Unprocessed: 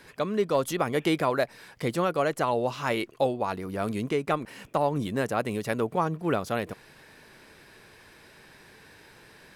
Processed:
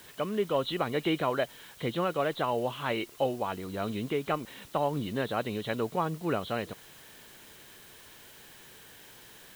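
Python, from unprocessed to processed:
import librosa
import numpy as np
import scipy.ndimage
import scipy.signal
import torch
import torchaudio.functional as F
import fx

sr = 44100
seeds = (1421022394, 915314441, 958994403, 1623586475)

y = fx.freq_compress(x, sr, knee_hz=2800.0, ratio=4.0)
y = fx.dmg_noise_colour(y, sr, seeds[0], colour='white', level_db=-51.0)
y = F.gain(torch.from_numpy(y), -3.5).numpy()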